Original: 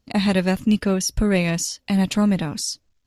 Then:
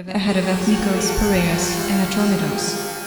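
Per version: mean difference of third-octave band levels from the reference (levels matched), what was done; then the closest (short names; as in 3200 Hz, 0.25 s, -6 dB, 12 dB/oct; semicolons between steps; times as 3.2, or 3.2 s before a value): 11.0 dB: on a send: reverse echo 0.391 s -11.5 dB; on the sum: shimmer reverb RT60 2 s, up +12 st, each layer -2 dB, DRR 4 dB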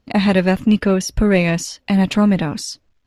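2.0 dB: tone controls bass -3 dB, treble -11 dB; in parallel at -10 dB: soft clip -23.5 dBFS, distortion -8 dB; on the sum: gain +5 dB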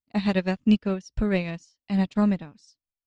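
6.5 dB: Bessel low-pass 4900 Hz, order 8; upward expander 2.5:1, over -35 dBFS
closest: second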